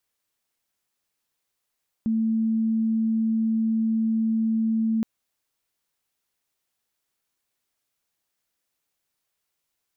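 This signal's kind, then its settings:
tone sine 223 Hz −20 dBFS 2.97 s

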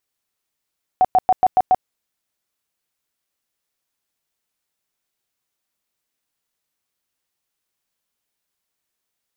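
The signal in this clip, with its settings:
tone bursts 744 Hz, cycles 27, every 0.14 s, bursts 6, −9.5 dBFS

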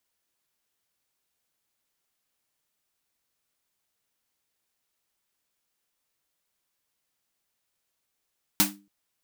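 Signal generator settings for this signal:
synth snare length 0.28 s, tones 200 Hz, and 300 Hz, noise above 620 Hz, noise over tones 9 dB, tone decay 0.38 s, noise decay 0.21 s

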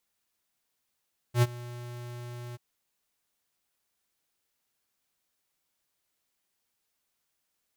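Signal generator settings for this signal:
note with an ADSR envelope square 121 Hz, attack 83 ms, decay 37 ms, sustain −21 dB, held 1.21 s, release 24 ms −19.5 dBFS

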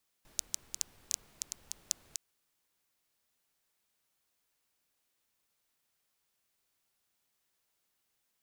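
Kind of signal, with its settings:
rain-like ticks over hiss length 1.91 s, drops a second 6, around 6,500 Hz, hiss −20 dB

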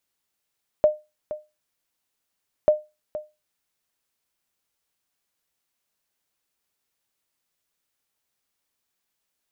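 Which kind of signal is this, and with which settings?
ping with an echo 608 Hz, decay 0.24 s, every 1.84 s, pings 2, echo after 0.47 s, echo −14.5 dB −8.5 dBFS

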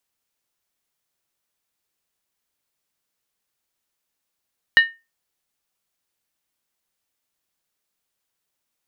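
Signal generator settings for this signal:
struck skin, lowest mode 1,830 Hz, decay 0.25 s, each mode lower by 9 dB, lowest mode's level −5.5 dB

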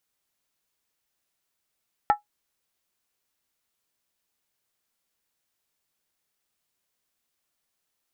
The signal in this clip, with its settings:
struck skin, lowest mode 831 Hz, decay 0.13 s, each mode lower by 8 dB, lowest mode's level −11.5 dB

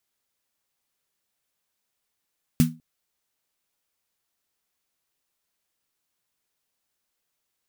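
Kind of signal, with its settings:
synth snare length 0.20 s, tones 160 Hz, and 240 Hz, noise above 1,100 Hz, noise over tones −11.5 dB, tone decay 0.28 s, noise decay 0.18 s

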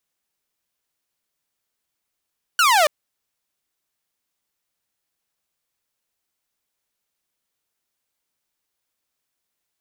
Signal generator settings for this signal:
single falling chirp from 1,500 Hz, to 570 Hz, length 0.28 s saw, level −10.5 dB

